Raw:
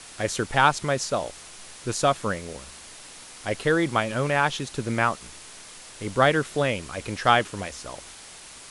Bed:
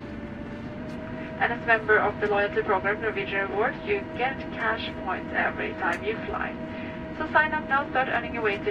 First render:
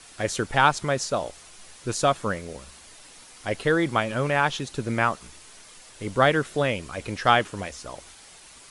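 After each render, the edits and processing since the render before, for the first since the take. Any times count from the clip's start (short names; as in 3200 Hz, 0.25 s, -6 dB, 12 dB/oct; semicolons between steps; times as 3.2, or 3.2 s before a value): denoiser 6 dB, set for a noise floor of -45 dBFS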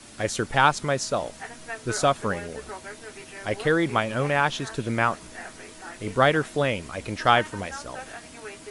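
add bed -14.5 dB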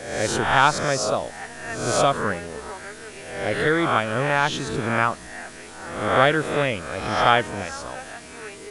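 spectral swells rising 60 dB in 0.83 s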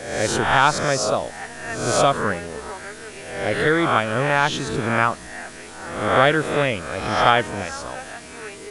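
gain +2 dB; limiter -2 dBFS, peak gain reduction 2 dB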